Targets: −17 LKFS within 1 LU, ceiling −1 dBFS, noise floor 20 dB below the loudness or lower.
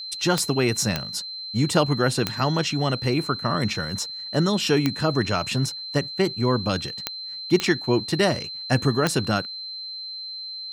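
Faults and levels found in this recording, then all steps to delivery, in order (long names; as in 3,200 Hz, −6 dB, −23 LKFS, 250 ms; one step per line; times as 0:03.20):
number of clicks 7; interfering tone 4,100 Hz; level of the tone −32 dBFS; integrated loudness −24.0 LKFS; sample peak −5.5 dBFS; target loudness −17.0 LKFS
→ click removal
notch filter 4,100 Hz, Q 30
level +7 dB
brickwall limiter −1 dBFS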